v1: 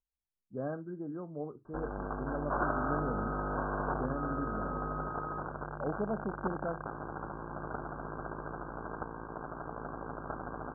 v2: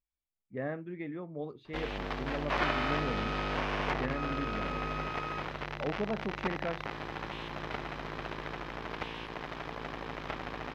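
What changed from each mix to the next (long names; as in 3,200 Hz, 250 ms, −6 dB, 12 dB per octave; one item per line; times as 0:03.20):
master: remove Chebyshev low-pass filter 1,600 Hz, order 10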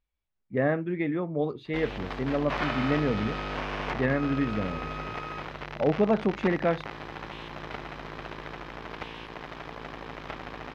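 speech +11.0 dB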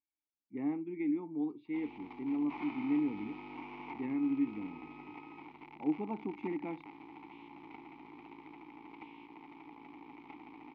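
master: add formant filter u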